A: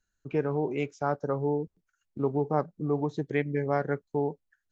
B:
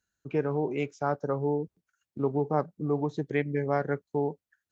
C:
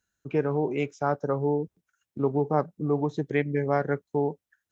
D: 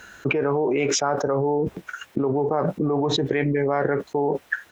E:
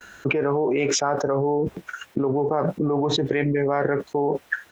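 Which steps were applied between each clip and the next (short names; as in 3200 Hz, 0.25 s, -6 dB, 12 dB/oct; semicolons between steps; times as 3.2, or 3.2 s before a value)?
HPF 69 Hz
notch 4500 Hz, Q 14; gain +2.5 dB
tone controls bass -11 dB, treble -13 dB; doubler 15 ms -13 dB; fast leveller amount 100%
gate -48 dBFS, range -40 dB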